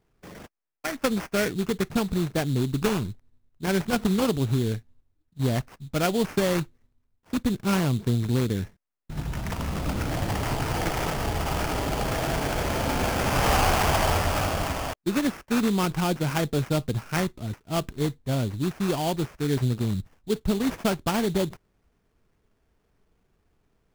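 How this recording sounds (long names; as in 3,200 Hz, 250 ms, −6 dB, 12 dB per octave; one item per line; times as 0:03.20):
aliases and images of a low sample rate 3,900 Hz, jitter 20%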